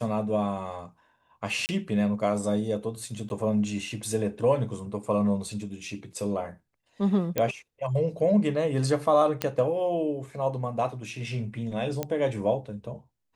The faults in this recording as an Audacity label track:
1.660000	1.690000	drop-out 29 ms
3.290000	3.300000	drop-out 11 ms
7.380000	7.380000	click −11 dBFS
9.420000	9.420000	click −10 dBFS
12.030000	12.030000	click −14 dBFS

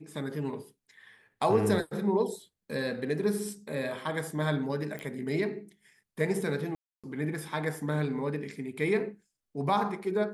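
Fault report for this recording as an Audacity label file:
4.990000	4.990000	click −24 dBFS
6.750000	7.040000	drop-out 286 ms

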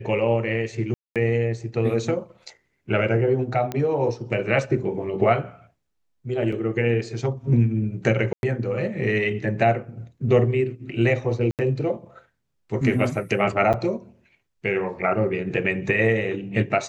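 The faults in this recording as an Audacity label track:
0.940000	1.160000	drop-out 217 ms
3.720000	3.720000	click −14 dBFS
6.520000	6.520000	drop-out 4.6 ms
8.330000	8.430000	drop-out 101 ms
11.510000	11.590000	drop-out 78 ms
13.730000	13.740000	drop-out 7 ms

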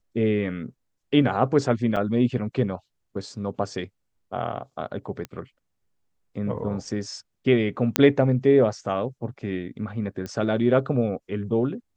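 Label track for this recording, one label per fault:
1.960000	1.970000	drop-out 5.5 ms
5.250000	5.250000	click −19 dBFS
7.960000	7.960000	click −1 dBFS
10.260000	10.260000	click −20 dBFS

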